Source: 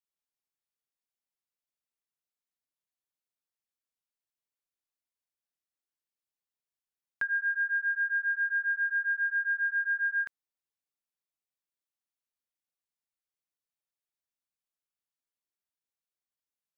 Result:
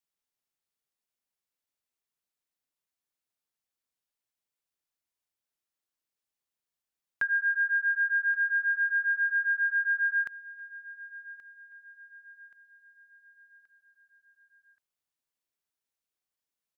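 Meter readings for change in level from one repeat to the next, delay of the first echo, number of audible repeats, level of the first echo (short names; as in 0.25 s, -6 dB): -6.5 dB, 1.127 s, 3, -17.5 dB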